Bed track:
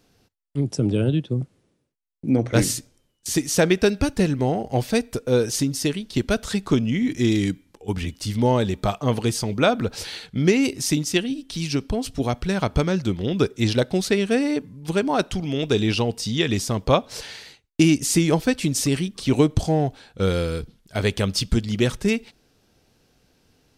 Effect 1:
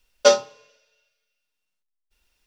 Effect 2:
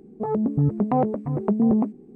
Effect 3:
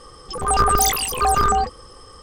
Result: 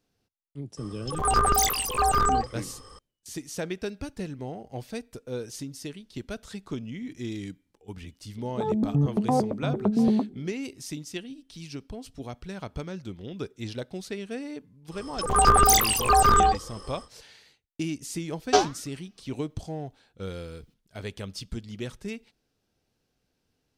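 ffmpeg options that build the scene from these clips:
-filter_complex "[3:a]asplit=2[a][b];[0:a]volume=-14.5dB[c];[1:a]aeval=exprs='val(0)*sin(2*PI*520*n/s+520*0.7/1.8*sin(2*PI*1.8*n/s))':c=same[d];[a]atrim=end=2.22,asetpts=PTS-STARTPTS,volume=-5dB,afade=t=in:d=0.004:c=hsin,afade=t=out:st=2.216:d=0.004:c=hsin,adelay=770[e];[2:a]atrim=end=2.15,asetpts=PTS-STARTPTS,volume=-2.5dB,afade=t=in:d=0.004:c=hsin,afade=t=out:st=2.146:d=0.004:c=hsin,adelay=8370[f];[b]atrim=end=2.22,asetpts=PTS-STARTPTS,volume=-1dB,afade=t=in:d=0.1,afade=t=out:st=2.12:d=0.1,adelay=14880[g];[d]atrim=end=2.46,asetpts=PTS-STARTPTS,volume=-2.5dB,afade=t=in:d=0.004:c=hsin,afade=t=out:st=2.456:d=0.004:c=hsin,adelay=806148S[h];[c][e][f][g][h]amix=inputs=5:normalize=0"

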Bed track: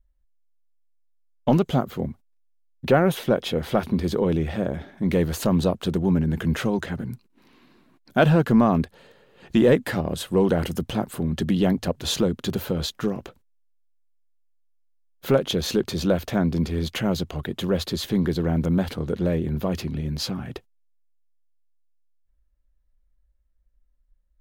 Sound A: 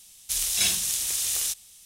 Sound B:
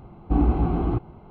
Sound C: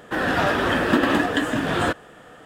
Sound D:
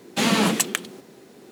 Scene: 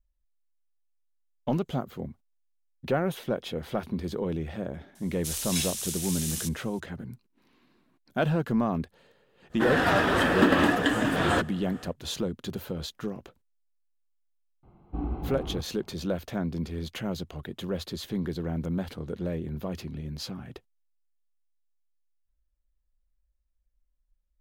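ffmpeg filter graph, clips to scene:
-filter_complex "[0:a]volume=-8.5dB[a];[1:a]atrim=end=1.85,asetpts=PTS-STARTPTS,volume=-7dB,afade=t=in:d=0.004:c=hsin,afade=t=out:st=1.846:d=0.004:c=hsin,adelay=4950[b];[3:a]atrim=end=2.45,asetpts=PTS-STARTPTS,volume=-2.5dB,afade=t=in:d=0.1,afade=t=out:st=2.35:d=0.1,adelay=9490[c];[2:a]atrim=end=1.3,asetpts=PTS-STARTPTS,volume=-12dB,afade=t=in:d=0.004:c=hsin,afade=t=out:st=1.296:d=0.004:c=hsin,adelay=14630[d];[a][b][c][d]amix=inputs=4:normalize=0"

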